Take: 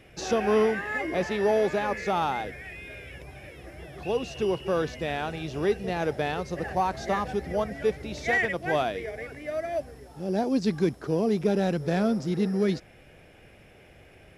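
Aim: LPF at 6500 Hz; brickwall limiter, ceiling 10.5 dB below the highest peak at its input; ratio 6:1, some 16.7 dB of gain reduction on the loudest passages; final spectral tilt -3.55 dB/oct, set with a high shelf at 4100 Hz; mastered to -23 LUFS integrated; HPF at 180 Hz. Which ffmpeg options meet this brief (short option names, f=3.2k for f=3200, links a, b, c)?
-af "highpass=180,lowpass=6.5k,highshelf=f=4.1k:g=3.5,acompressor=threshold=-38dB:ratio=6,volume=23dB,alimiter=limit=-14dB:level=0:latency=1"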